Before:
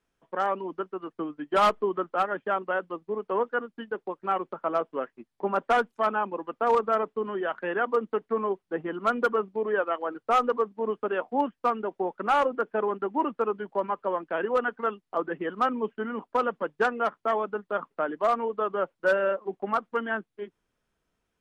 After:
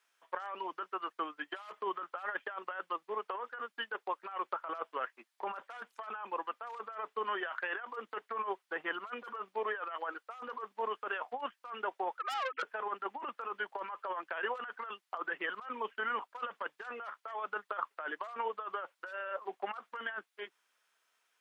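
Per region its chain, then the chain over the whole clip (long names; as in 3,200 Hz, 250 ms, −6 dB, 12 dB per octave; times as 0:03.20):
0:12.19–0:12.63: three sine waves on the formant tracks + high-pass filter 660 Hz + tube saturation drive 30 dB, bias 0.3
whole clip: high-pass filter 1,100 Hz 12 dB per octave; compressor whose output falls as the input rises −40 dBFS, ratio −1; level +1 dB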